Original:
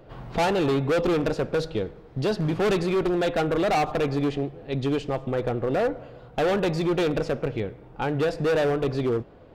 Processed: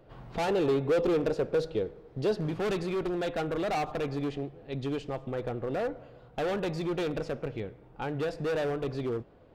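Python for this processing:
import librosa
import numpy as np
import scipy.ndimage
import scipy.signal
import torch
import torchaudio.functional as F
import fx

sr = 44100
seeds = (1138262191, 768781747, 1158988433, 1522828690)

y = fx.peak_eq(x, sr, hz=440.0, db=6.5, octaves=0.85, at=(0.48, 2.49))
y = y * 10.0 ** (-7.5 / 20.0)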